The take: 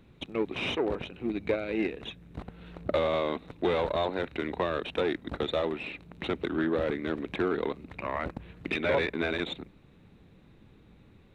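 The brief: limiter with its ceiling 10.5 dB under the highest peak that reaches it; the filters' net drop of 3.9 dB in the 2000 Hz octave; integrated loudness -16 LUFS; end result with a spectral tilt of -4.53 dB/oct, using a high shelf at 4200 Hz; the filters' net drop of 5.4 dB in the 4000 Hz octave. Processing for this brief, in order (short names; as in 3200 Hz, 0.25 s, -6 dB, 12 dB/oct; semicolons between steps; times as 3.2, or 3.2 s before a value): bell 2000 Hz -4 dB; bell 4000 Hz -7.5 dB; high shelf 4200 Hz +4.5 dB; gain +21.5 dB; limiter -5 dBFS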